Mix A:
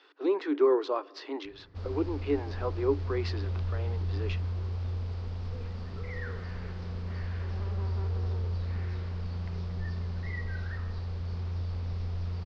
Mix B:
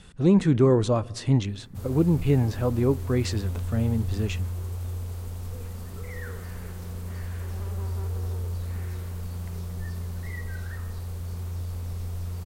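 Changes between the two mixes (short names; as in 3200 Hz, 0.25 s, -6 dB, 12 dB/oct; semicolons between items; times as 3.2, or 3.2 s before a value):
speech: remove rippled Chebyshev high-pass 280 Hz, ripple 6 dB; master: remove elliptic low-pass 5000 Hz, stop band 80 dB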